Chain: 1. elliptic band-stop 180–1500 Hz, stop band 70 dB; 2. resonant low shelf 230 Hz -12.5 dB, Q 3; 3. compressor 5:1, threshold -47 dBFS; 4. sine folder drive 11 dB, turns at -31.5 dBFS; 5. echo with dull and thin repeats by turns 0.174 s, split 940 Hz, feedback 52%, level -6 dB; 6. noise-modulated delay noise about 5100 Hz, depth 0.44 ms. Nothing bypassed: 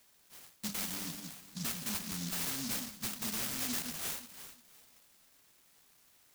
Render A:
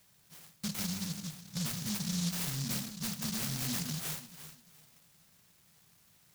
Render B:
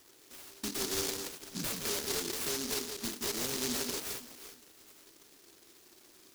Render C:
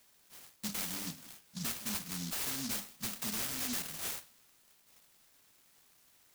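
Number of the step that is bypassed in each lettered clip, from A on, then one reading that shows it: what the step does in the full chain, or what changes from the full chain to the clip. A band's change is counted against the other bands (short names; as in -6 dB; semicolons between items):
2, 125 Hz band +10.0 dB; 1, 500 Hz band +10.5 dB; 5, momentary loudness spread change -3 LU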